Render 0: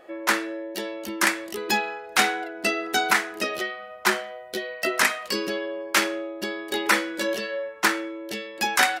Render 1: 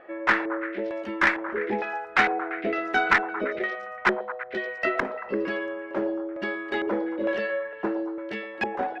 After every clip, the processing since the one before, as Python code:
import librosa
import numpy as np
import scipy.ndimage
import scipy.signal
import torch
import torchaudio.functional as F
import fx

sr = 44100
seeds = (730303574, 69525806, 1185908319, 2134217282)

y = fx.filter_lfo_lowpass(x, sr, shape='square', hz=1.1, low_hz=520.0, high_hz=1900.0, q=1.5)
y = fx.tube_stage(y, sr, drive_db=8.0, bias=0.25)
y = fx.echo_stepped(y, sr, ms=114, hz=630.0, octaves=0.7, feedback_pct=70, wet_db=-7)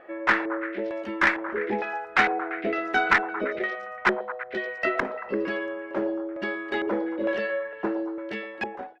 y = fx.fade_out_tail(x, sr, length_s=0.52)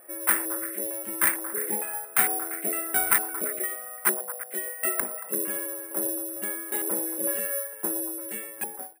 y = (np.kron(x[::4], np.eye(4)[0]) * 4)[:len(x)]
y = y * 10.0 ** (-7.5 / 20.0)